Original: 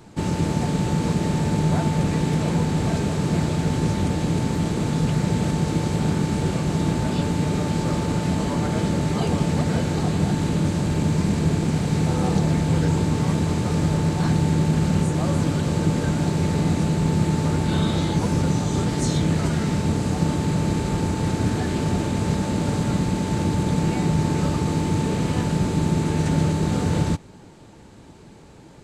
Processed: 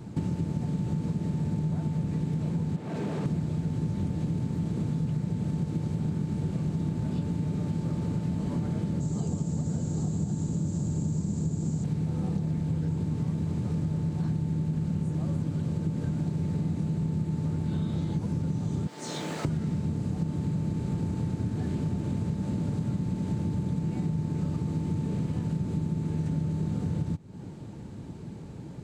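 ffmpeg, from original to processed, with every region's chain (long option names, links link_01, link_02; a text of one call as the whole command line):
ffmpeg -i in.wav -filter_complex "[0:a]asettb=1/sr,asplit=3[link_01][link_02][link_03];[link_01]atrim=end=2.764[link_04];[link_02]atrim=start=2.76:end=3.26,asetpts=PTS-STARTPTS,afade=type=in:duration=0.004:curve=qsin,afade=type=out:start_time=0.496:duration=0.004:curve=qsin,highpass=120,asoftclip=type=hard:threshold=-19.5dB,bass=frequency=250:gain=-12,treble=frequency=4000:gain=-8[link_05];[link_03]atrim=start=3.256[link_06];[link_04][link_05]acrossfade=duration=0.004:curve1=hsin:curve2=qsin[link_07];[link_07][link_06]acrossfade=duration=0.004:curve1=qsin:curve2=hsin,asettb=1/sr,asplit=3[link_08][link_09][link_10];[link_08]atrim=end=9.004[link_11];[link_09]atrim=start=9:end=11.84,asetpts=PTS-STARTPTS,afade=type=in:duration=0.004:curve=qsin,afade=type=out:start_time=2.836:duration=0.004:curve=qsin,lowpass=frequency=7200:width_type=q:width=8.1,equalizer=frequency=2300:width_type=o:width=1.4:gain=-8[link_12];[link_10]atrim=start=11.836[link_13];[link_11][link_12]acrossfade=duration=0.004:curve1=hsin:curve2=qsin[link_14];[link_14][link_13]acrossfade=duration=0.004:curve1=qsin:curve2=hsin,asettb=1/sr,asplit=3[link_15][link_16][link_17];[link_15]atrim=end=18.874[link_18];[link_16]atrim=start=18.87:end=19.45,asetpts=PTS-STARTPTS,afade=type=in:duration=0.004:curve=qsin,afade=type=out:start_time=0.576:duration=0.004:curve=qsin,acrossover=split=9300[link_19][link_20];[link_20]acompressor=threshold=-57dB:ratio=4:attack=1:release=60[link_21];[link_19][link_21]amix=inputs=2:normalize=0,highpass=640,acrusher=bits=9:dc=4:mix=0:aa=0.000001[link_22];[link_17]atrim=start=19.446[link_23];[link_18][link_22]acrossfade=duration=0.004:curve1=hsin:curve2=qsin[link_24];[link_24][link_23]acrossfade=duration=0.004:curve1=qsin:curve2=hsin,equalizer=frequency=140:width=0.46:gain=14,acompressor=threshold=-22dB:ratio=6,volume=-5.5dB" out.wav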